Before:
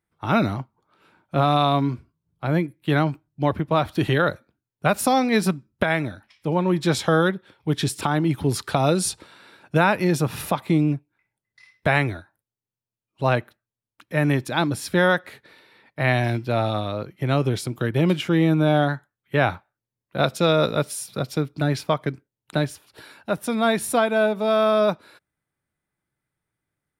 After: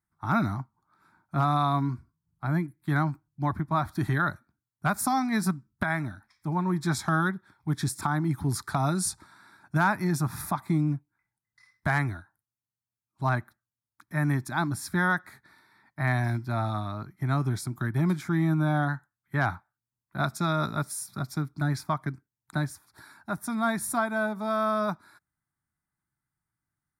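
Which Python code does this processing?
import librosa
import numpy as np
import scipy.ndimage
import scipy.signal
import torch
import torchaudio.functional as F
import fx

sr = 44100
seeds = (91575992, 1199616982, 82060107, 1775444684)

y = fx.fixed_phaser(x, sr, hz=1200.0, stages=4)
y = fx.clip_asym(y, sr, top_db=-14.0, bottom_db=-11.5)
y = y * 10.0 ** (-2.5 / 20.0)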